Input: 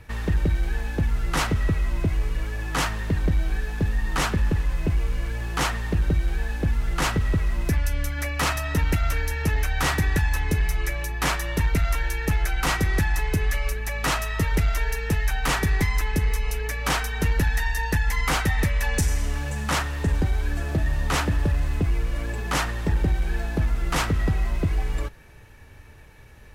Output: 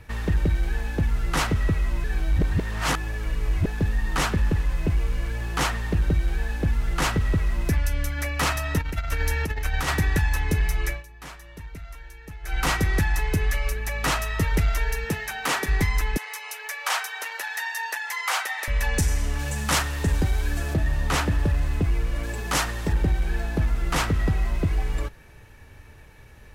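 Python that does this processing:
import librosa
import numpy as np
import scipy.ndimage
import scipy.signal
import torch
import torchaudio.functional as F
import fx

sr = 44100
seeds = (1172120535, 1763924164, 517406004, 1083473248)

y = fx.over_compress(x, sr, threshold_db=-24.0, ratio=-0.5, at=(8.78, 9.87), fade=0.02)
y = fx.highpass(y, sr, hz=fx.line((15.04, 120.0), (15.67, 330.0)), slope=12, at=(15.04, 15.67), fade=0.02)
y = fx.highpass(y, sr, hz=660.0, slope=24, at=(16.17, 18.68))
y = fx.high_shelf(y, sr, hz=3800.0, db=7.5, at=(19.39, 20.74))
y = fx.bass_treble(y, sr, bass_db=-2, treble_db=5, at=(22.23, 22.93))
y = fx.edit(y, sr, fx.reverse_span(start_s=2.04, length_s=1.62),
    fx.fade_down_up(start_s=10.9, length_s=1.66, db=-17.0, fade_s=0.13), tone=tone)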